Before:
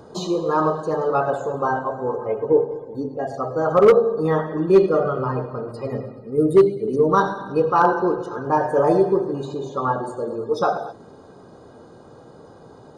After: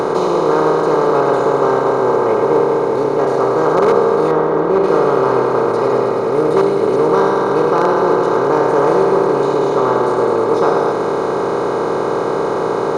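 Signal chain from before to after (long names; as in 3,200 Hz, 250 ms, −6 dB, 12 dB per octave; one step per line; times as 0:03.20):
compressor on every frequency bin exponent 0.2
0:04.31–0:04.84: high-shelf EQ 3,000 Hz −12 dB
level −5.5 dB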